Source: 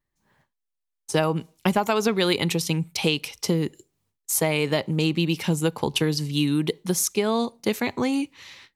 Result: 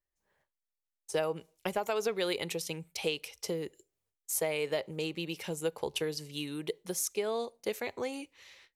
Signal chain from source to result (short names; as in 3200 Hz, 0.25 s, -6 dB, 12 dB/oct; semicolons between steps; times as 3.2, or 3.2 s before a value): graphic EQ 125/250/500/1000/4000 Hz -10/-10/+6/-5/-3 dB; gain -8.5 dB